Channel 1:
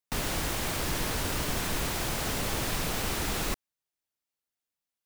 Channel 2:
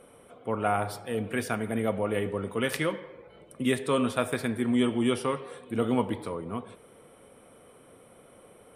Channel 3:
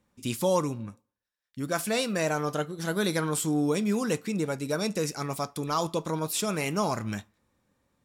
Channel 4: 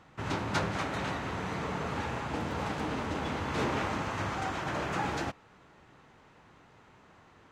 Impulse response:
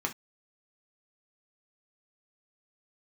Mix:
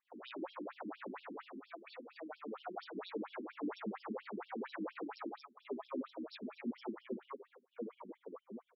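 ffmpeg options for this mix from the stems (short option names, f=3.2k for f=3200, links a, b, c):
-filter_complex "[0:a]alimiter=level_in=3.5dB:limit=-24dB:level=0:latency=1:release=129,volume=-3.5dB,volume=-3dB,asplit=2[a][b];[b]volume=-20dB[c];[1:a]agate=range=-12dB:threshold=-43dB:ratio=16:detection=peak,adelay=2000,volume=-8.5dB[d];[2:a]acompressor=threshold=-31dB:ratio=10,volume=-10dB,asplit=3[e][f][g];[f]volume=-8dB[h];[3:a]adelay=50,volume=-5dB,asplit=3[i][j][k];[i]atrim=end=1.44,asetpts=PTS-STARTPTS,afade=t=out:st=1.436:d=0.004:c=hsin[l];[j]atrim=start=1.44:end=2.94,asetpts=PTS-STARTPTS,volume=0[m];[k]atrim=start=2.94,asetpts=PTS-STARTPTS,afade=t=in:d=0.004:c=hsin[n];[l][m][n]concat=n=3:v=0:a=1[o];[g]apad=whole_len=223130[p];[a][p]sidechaincompress=threshold=-54dB:ratio=8:attack=5.5:release=253[q];[q][d][o]amix=inputs=3:normalize=0,lowpass=1.7k,alimiter=level_in=4.5dB:limit=-24dB:level=0:latency=1:release=10,volume=-4.5dB,volume=0dB[r];[4:a]atrim=start_sample=2205[s];[c][h]amix=inputs=2:normalize=0[t];[t][s]afir=irnorm=-1:irlink=0[u];[e][r][u]amix=inputs=3:normalize=0,afftfilt=real='re*between(b*sr/1024,250*pow(4000/250,0.5+0.5*sin(2*PI*4.3*pts/sr))/1.41,250*pow(4000/250,0.5+0.5*sin(2*PI*4.3*pts/sr))*1.41)':imag='im*between(b*sr/1024,250*pow(4000/250,0.5+0.5*sin(2*PI*4.3*pts/sr))/1.41,250*pow(4000/250,0.5+0.5*sin(2*PI*4.3*pts/sr))*1.41)':win_size=1024:overlap=0.75"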